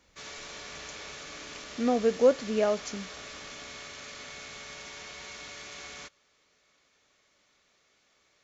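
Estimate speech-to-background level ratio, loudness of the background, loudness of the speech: 15.0 dB, -42.0 LUFS, -27.0 LUFS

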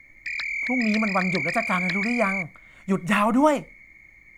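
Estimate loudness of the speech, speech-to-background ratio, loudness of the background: -24.5 LUFS, 2.0 dB, -26.5 LUFS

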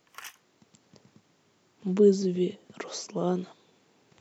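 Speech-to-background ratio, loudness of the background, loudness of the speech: 18.0 dB, -45.5 LUFS, -27.5 LUFS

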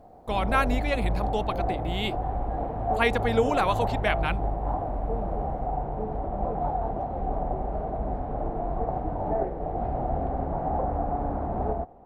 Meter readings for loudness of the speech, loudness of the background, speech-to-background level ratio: -28.5 LUFS, -30.0 LUFS, 1.5 dB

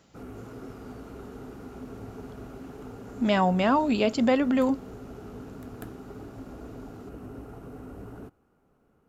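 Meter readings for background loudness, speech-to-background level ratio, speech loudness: -43.0 LUFS, 18.5 dB, -24.5 LUFS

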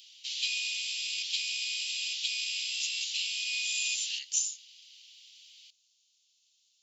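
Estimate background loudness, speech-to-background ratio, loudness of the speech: -31.0 LUFS, -3.5 dB, -34.5 LUFS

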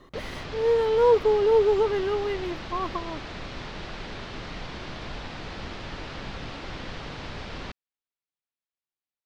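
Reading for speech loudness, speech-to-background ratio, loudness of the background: -23.5 LUFS, 14.0 dB, -37.5 LUFS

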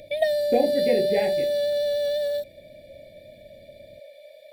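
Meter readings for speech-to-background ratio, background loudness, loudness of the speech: -2.0 dB, -24.5 LUFS, -26.5 LUFS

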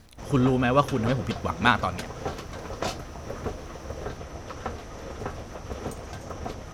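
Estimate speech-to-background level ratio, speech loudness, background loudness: 12.0 dB, -24.5 LUFS, -36.5 LUFS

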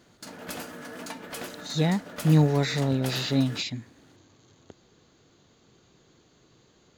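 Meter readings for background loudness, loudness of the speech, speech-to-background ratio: -39.5 LUFS, -25.0 LUFS, 14.5 dB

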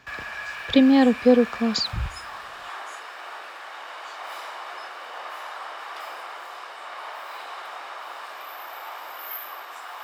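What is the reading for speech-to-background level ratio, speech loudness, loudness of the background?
16.5 dB, -19.5 LUFS, -36.0 LUFS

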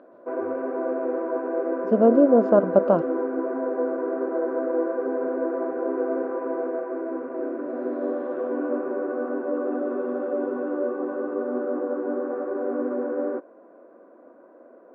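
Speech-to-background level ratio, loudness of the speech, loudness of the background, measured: 8.0 dB, -19.5 LUFS, -27.5 LUFS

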